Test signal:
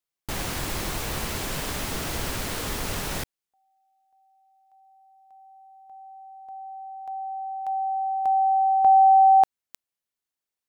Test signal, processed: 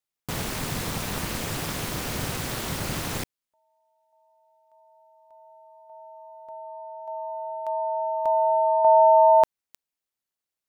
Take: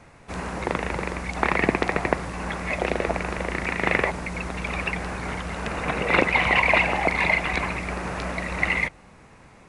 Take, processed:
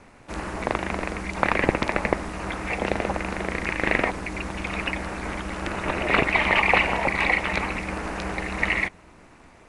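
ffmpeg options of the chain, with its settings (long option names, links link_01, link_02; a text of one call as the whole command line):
ffmpeg -i in.wav -af "aeval=exprs='val(0)*sin(2*PI*130*n/s)':channel_layout=same,volume=2.5dB" out.wav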